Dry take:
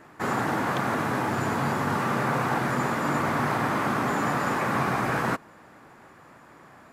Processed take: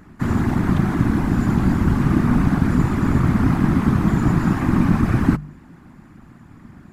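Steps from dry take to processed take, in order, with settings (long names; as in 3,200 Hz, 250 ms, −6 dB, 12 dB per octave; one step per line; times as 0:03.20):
low shelf with overshoot 270 Hz +13 dB, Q 3
random phases in short frames
hum removal 49.7 Hz, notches 4
level −2 dB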